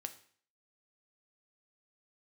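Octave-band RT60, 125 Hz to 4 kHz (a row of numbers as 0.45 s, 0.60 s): 0.55 s, 0.50 s, 0.50 s, 0.50 s, 0.50 s, 0.50 s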